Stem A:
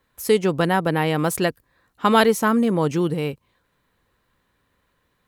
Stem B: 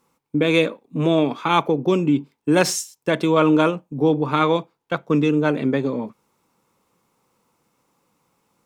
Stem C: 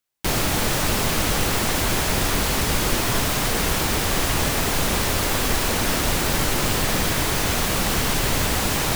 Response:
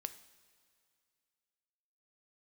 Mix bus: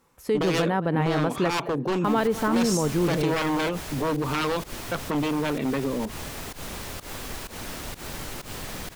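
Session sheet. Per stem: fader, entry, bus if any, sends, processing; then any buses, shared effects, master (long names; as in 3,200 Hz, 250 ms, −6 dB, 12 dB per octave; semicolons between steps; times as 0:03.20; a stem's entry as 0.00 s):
−1.0 dB, 0.00 s, no bus, no send, echo send −20.5 dB, low-pass filter 1,600 Hz 6 dB per octave
+1.0 dB, 0.00 s, bus A, no send, no echo send, no processing
−14.0 dB, 1.80 s, bus A, no send, no echo send, fake sidechain pumping 127 BPM, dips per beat 1, −19 dB, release 129 ms
bus A: 0.0 dB, wave folding −14 dBFS; brickwall limiter −19.5 dBFS, peak gain reduction 5.5 dB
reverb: not used
echo: repeating echo 214 ms, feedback 37%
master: brickwall limiter −14 dBFS, peak gain reduction 7.5 dB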